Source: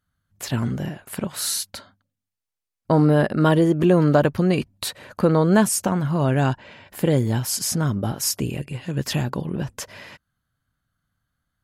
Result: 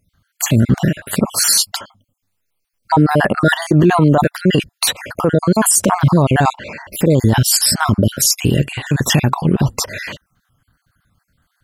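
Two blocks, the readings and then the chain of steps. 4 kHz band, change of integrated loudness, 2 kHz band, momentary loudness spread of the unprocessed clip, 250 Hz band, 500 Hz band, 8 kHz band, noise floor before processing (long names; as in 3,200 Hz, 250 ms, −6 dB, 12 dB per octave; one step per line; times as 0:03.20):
+11.5 dB, +7.0 dB, +10.0 dB, 14 LU, +5.5 dB, +3.5 dB, +11.5 dB, −85 dBFS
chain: time-frequency cells dropped at random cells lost 46%
in parallel at +3 dB: compressor whose output falls as the input rises −24 dBFS, ratio −1
on the sum: brickwall limiter −9 dBFS, peak gain reduction 7.5 dB
level +6.5 dB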